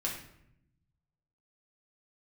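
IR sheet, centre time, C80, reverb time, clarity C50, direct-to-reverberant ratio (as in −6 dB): 33 ms, 9.0 dB, 0.75 s, 5.0 dB, −3.5 dB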